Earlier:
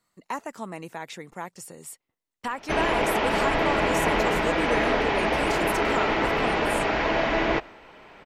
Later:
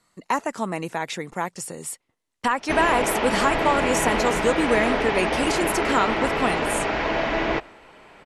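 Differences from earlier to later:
speech +8.5 dB
master: add Butterworth low-pass 12,000 Hz 72 dB per octave

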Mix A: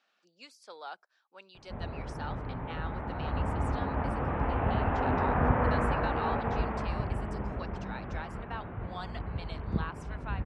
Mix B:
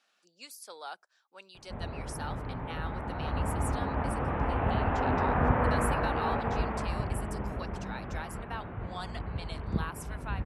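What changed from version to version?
master: remove high-frequency loss of the air 120 metres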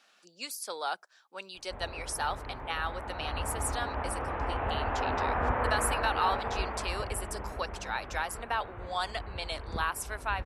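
speech +8.5 dB
background: add parametric band 160 Hz −13 dB 1.7 octaves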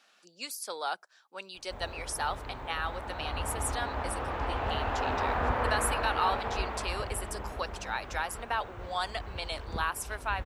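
background: remove low-pass filter 2,600 Hz 24 dB per octave

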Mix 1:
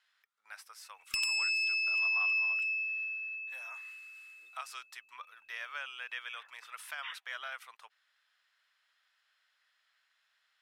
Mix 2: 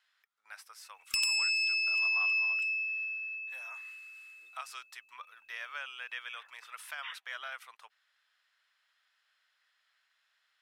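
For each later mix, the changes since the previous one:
background: add bass and treble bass 0 dB, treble +5 dB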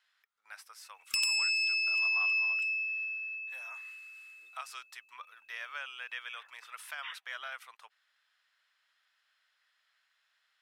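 master: add low-shelf EQ 75 Hz −6.5 dB

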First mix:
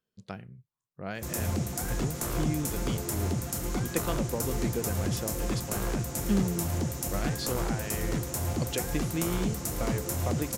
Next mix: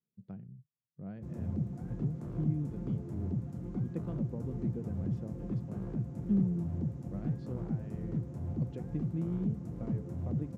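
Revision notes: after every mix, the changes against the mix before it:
master: add resonant band-pass 160 Hz, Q 1.5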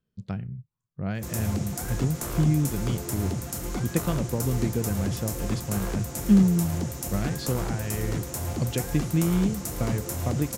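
speech: add bass and treble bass +14 dB, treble −3 dB
master: remove resonant band-pass 160 Hz, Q 1.5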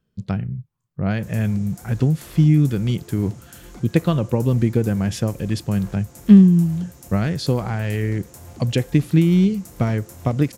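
speech +8.5 dB
background −10.0 dB

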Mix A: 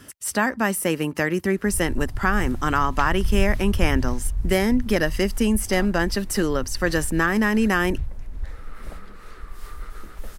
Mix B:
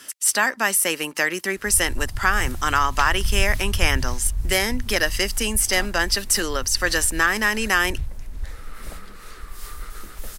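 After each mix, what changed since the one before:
speech: add meter weighting curve A
master: add high-shelf EQ 3,000 Hz +12 dB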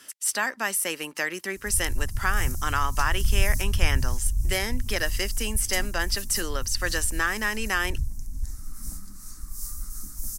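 speech −6.5 dB
background: add drawn EQ curve 280 Hz 0 dB, 420 Hz −25 dB, 1,000 Hz −12 dB, 3,200 Hz −23 dB, 5,800 Hz +6 dB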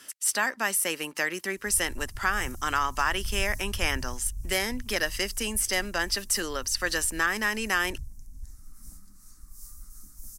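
background −11.0 dB

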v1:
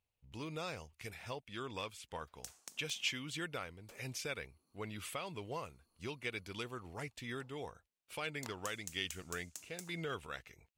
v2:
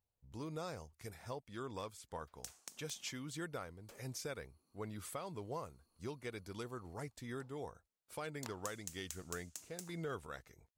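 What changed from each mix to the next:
speech: add parametric band 2,700 Hz −14.5 dB 0.94 octaves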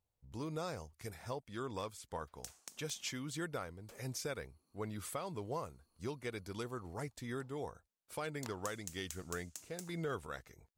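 speech +3.0 dB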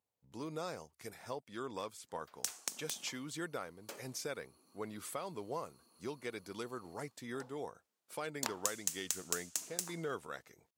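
background +11.5 dB
master: add high-pass filter 190 Hz 12 dB per octave

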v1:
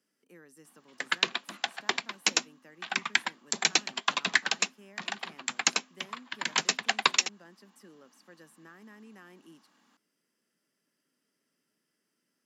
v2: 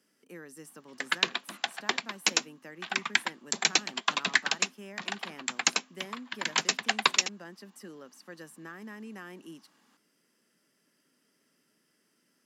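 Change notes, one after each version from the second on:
speech +8.0 dB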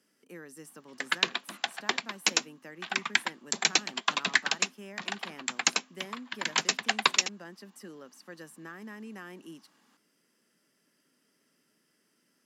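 nothing changed

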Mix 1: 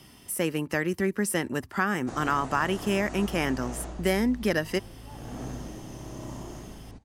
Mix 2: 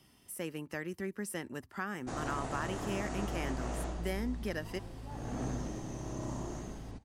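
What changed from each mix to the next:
speech −12.0 dB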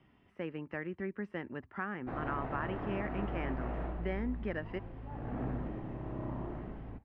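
background: add high-frequency loss of the air 120 metres
master: add low-pass filter 2,500 Hz 24 dB per octave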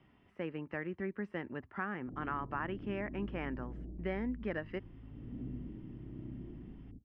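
background: add transistor ladder low-pass 360 Hz, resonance 30%

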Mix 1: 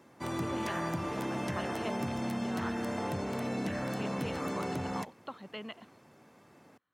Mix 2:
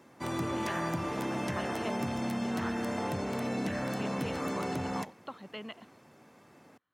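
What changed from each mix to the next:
background: send +8.0 dB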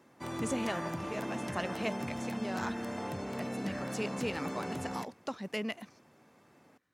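speech: remove Chebyshev low-pass with heavy ripple 4,400 Hz, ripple 9 dB
background −4.5 dB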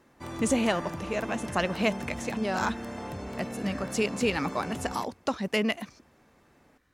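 speech +9.0 dB
master: remove high-pass filter 99 Hz 24 dB per octave

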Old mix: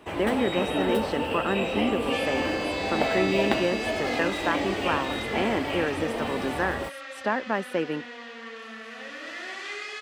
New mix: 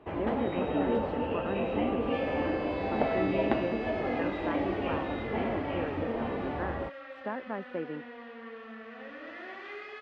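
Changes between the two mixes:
speech −6.5 dB
master: add head-to-tape spacing loss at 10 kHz 42 dB

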